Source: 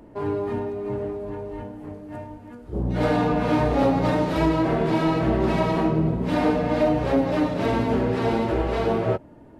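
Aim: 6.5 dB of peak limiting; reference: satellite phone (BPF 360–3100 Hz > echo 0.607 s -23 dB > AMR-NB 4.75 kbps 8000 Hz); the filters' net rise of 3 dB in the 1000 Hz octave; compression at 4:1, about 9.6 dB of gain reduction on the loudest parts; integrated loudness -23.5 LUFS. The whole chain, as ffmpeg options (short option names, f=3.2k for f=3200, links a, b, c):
-af "equalizer=f=1k:t=o:g=4,acompressor=threshold=-27dB:ratio=4,alimiter=limit=-23.5dB:level=0:latency=1,highpass=360,lowpass=3.1k,aecho=1:1:607:0.0708,volume=14dB" -ar 8000 -c:a libopencore_amrnb -b:a 4750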